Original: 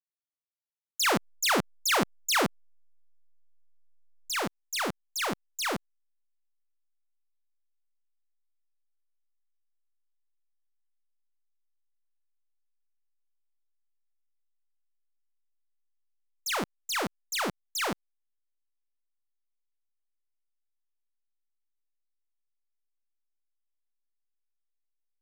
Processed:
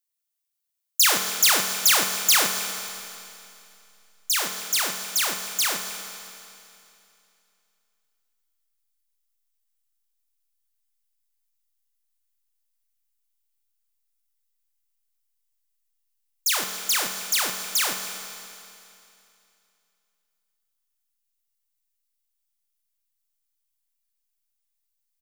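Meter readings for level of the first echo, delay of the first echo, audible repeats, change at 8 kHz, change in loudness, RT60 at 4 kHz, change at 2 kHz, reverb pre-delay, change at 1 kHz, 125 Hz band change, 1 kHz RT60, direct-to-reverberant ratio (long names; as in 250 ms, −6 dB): −19.5 dB, 275 ms, 1, +12.5 dB, +8.0 dB, 2.7 s, +4.5 dB, 5 ms, +1.5 dB, can't be measured, 2.7 s, 5.0 dB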